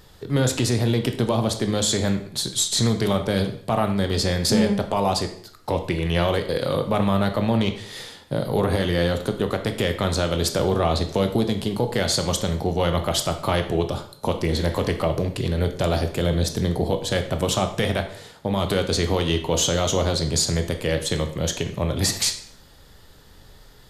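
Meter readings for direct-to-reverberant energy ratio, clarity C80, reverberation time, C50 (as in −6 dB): 6.0 dB, 13.0 dB, 0.55 s, 10.5 dB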